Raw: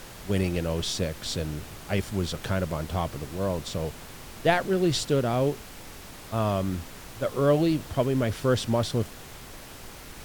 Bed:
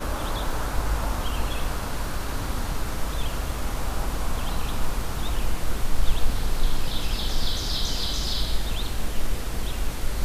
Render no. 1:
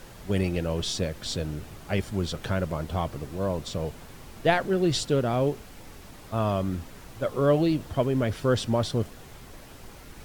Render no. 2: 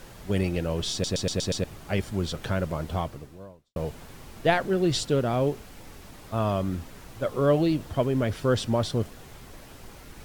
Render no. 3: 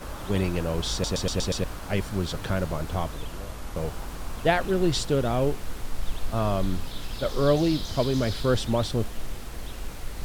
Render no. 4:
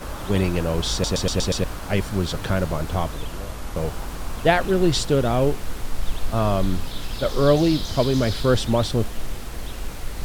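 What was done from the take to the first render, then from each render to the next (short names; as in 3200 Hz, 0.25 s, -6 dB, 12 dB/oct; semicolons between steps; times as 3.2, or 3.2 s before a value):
denoiser 6 dB, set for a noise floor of -44 dBFS
0.92 stutter in place 0.12 s, 6 plays; 2.97–3.76 fade out quadratic
add bed -8.5 dB
gain +4.5 dB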